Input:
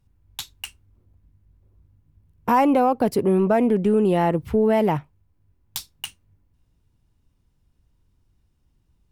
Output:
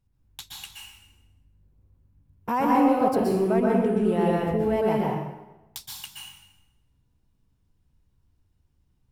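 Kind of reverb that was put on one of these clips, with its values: plate-style reverb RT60 1 s, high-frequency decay 0.85×, pre-delay 110 ms, DRR -3.5 dB; trim -8 dB

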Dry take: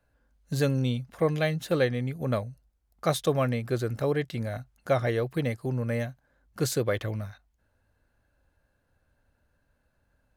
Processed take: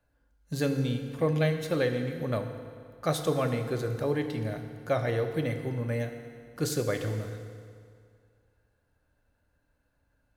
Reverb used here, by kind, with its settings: FDN reverb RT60 2.2 s, low-frequency decay 0.95×, high-frequency decay 0.85×, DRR 5.5 dB; trim -3 dB

